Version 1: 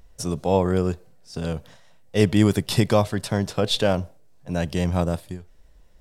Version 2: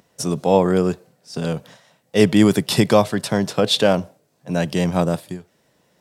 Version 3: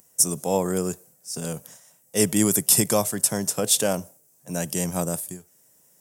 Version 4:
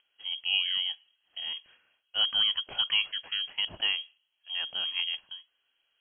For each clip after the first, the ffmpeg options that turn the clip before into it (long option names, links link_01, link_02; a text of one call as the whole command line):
ffmpeg -i in.wav -af "highpass=frequency=130:width=0.5412,highpass=frequency=130:width=1.3066,volume=5dB" out.wav
ffmpeg -i in.wav -af "aexciter=amount=13:drive=3.4:freq=6000,volume=-8dB" out.wav
ffmpeg -i in.wav -af "lowpass=frequency=2900:width_type=q:width=0.5098,lowpass=frequency=2900:width_type=q:width=0.6013,lowpass=frequency=2900:width_type=q:width=0.9,lowpass=frequency=2900:width_type=q:width=2.563,afreqshift=-3400,volume=-5dB" out.wav